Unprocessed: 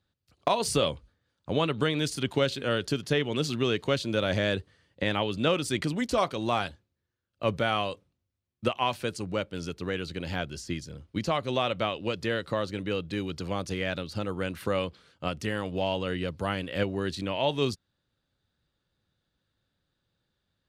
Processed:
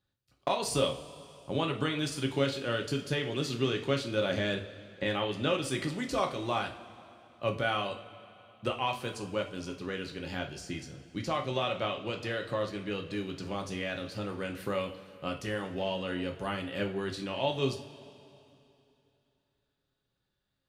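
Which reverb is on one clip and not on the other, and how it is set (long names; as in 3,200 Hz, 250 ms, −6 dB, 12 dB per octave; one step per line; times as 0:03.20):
coupled-rooms reverb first 0.34 s, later 2.9 s, from −18 dB, DRR 2 dB
level −5.5 dB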